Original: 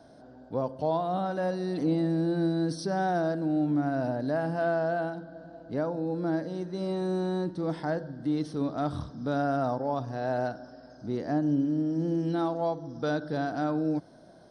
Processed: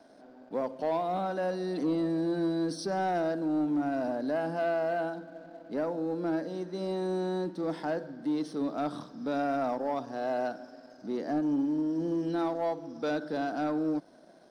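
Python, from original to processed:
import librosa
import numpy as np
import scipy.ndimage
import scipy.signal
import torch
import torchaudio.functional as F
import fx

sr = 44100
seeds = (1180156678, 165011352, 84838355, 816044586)

y = scipy.signal.sosfilt(scipy.signal.butter(4, 200.0, 'highpass', fs=sr, output='sos'), x)
y = fx.leveller(y, sr, passes=1)
y = F.gain(torch.from_numpy(y), -4.0).numpy()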